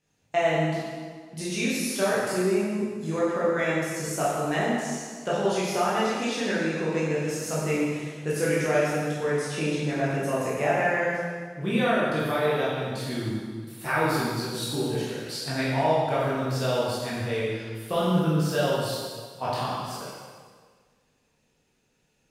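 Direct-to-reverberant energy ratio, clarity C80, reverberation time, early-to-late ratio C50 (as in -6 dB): -8.5 dB, 0.5 dB, 1.7 s, -2.0 dB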